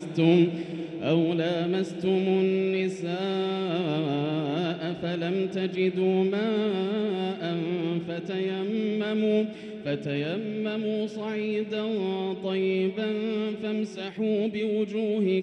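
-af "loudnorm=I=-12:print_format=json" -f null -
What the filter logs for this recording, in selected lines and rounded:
"input_i" : "-27.5",
"input_tp" : "-10.0",
"input_lra" : "2.5",
"input_thresh" : "-37.5",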